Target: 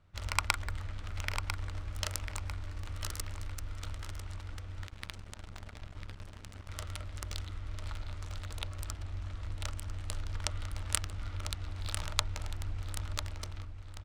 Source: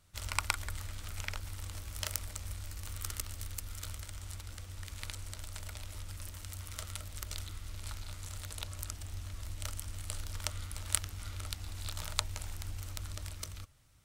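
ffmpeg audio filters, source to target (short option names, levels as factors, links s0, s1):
-filter_complex "[0:a]aecho=1:1:998|1996|2994|3992|4990:0.398|0.159|0.0637|0.0255|0.0102,asettb=1/sr,asplit=3[s0][s1][s2];[s0]atrim=end=4.874[s3];[s1]atrim=start=4.87:end=6.69,asetpts=PTS-STARTPTS,afade=t=in:d=0.004:c=qsin,afade=t=out:st=1.816:d=0.004:c=qsin,aeval=exprs='sgn(val(0))*max(abs(val(0))-0.00501,0)':c=same[s4];[s2]atrim=start=6.686[s5];[s3][s4]acrossfade=d=0.004:c1=hsin:c2=qsin[s6];[s6][s5]acrossfade=d=0.004:c1=qsin:c2=hsin,adynamicsmooth=sensitivity=6.5:basefreq=2400,volume=1.41"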